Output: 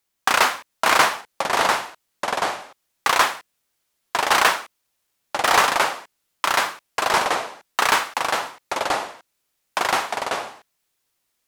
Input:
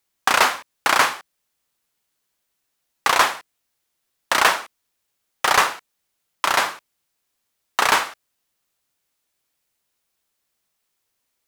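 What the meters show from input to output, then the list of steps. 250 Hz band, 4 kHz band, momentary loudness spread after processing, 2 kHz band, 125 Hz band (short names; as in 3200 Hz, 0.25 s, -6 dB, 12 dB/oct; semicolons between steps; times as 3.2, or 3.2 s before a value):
+3.5 dB, +1.0 dB, 12 LU, +1.0 dB, +3.5 dB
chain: echoes that change speed 0.508 s, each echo -3 st, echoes 2; gain -1 dB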